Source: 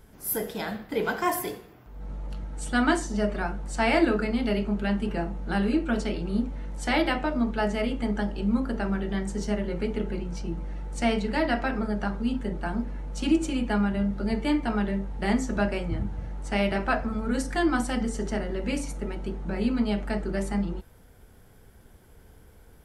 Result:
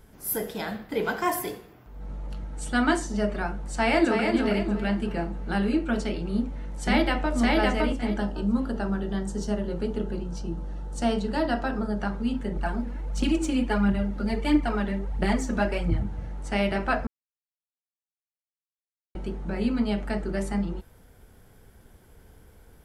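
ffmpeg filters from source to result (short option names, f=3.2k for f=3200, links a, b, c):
-filter_complex "[0:a]asplit=2[a][b];[b]afade=t=in:st=3.72:d=0.01,afade=t=out:st=4.27:d=0.01,aecho=0:1:320|640|960|1280|1600:0.562341|0.224937|0.0899746|0.0359898|0.0143959[c];[a][c]amix=inputs=2:normalize=0,asplit=2[d][e];[e]afade=t=in:st=6.3:d=0.01,afade=t=out:st=7.36:d=0.01,aecho=0:1:560|1120|1680:0.944061|0.188812|0.0377624[f];[d][f]amix=inputs=2:normalize=0,asettb=1/sr,asplit=3[g][h][i];[g]atrim=end=8.184[j];[h]atrim=start=8.18:end=12,asetpts=PTS-STARTPTS,afade=t=in:d=0.004:c=qsin,afade=t=out:st=3.816:d=0.004:c=qsin,equalizer=f=2.2k:t=o:w=0.37:g=-13.5[k];[i]atrim=start=11.996[l];[j][k]acrossfade=d=0.004:c1=hsin:c2=qsin[m];[m][l]acrossfade=d=0.004:c1=qsin:c2=hsin,asettb=1/sr,asplit=3[n][o][p];[n]atrim=end=12.564[q];[o]atrim=start=12.56:end=16.01,asetpts=PTS-STARTPTS,afade=t=in:d=0.004:c=qsin,afade=t=out:st=3.446:d=0.004:c=qsin,aphaser=in_gain=1:out_gain=1:delay=4.4:decay=0.5:speed=1.5:type=triangular[r];[p]atrim=start=16.006[s];[q][r]acrossfade=d=0.004:c1=hsin:c2=qsin[t];[t][s]acrossfade=d=0.004:c1=qsin:c2=hsin,asplit=3[u][v][w];[u]atrim=end=17.07,asetpts=PTS-STARTPTS,afade=t=out:st=17.066:d=0.004:c=hsin[x];[v]atrim=start=17.07:end=19.15,asetpts=PTS-STARTPTS,volume=0[y];[w]atrim=start=19.15,asetpts=PTS-STARTPTS,afade=t=in:d=0.004:c=hsin[z];[x][y][z]concat=n=3:v=0:a=1"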